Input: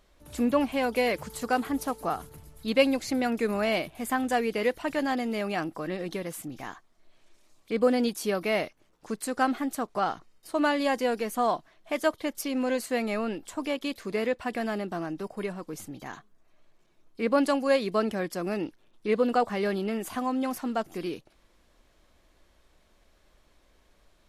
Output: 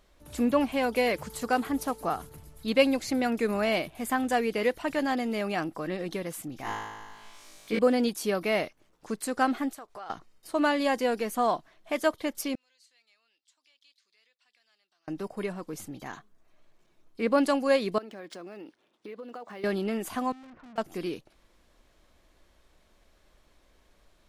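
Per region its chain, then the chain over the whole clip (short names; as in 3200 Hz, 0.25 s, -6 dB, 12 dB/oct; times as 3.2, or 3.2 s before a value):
6.63–7.79 hard clip -18.5 dBFS + flutter echo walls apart 3.2 m, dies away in 1.3 s + mismatched tape noise reduction encoder only
9.7–10.1 bell 200 Hz -13 dB 1.3 oct + compressor 3:1, threshold -43 dBFS
12.55–15.08 compressor 4:1, threshold -30 dBFS + ladder band-pass 5400 Hz, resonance 30% + tilt -3.5 dB/oct
17.98–19.64 compressor 12:1, threshold -37 dBFS + HPF 250 Hz + decimation joined by straight lines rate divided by 3×
20.32–20.78 Bessel low-pass 1200 Hz, order 4 + bell 780 Hz -9 dB 0.43 oct + tube stage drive 48 dB, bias 0.55
whole clip: dry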